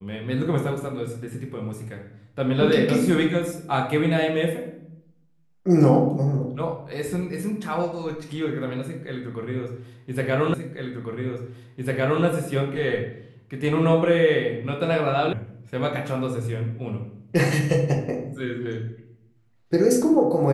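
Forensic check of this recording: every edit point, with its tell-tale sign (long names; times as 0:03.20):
0:10.54: the same again, the last 1.7 s
0:15.33: cut off before it has died away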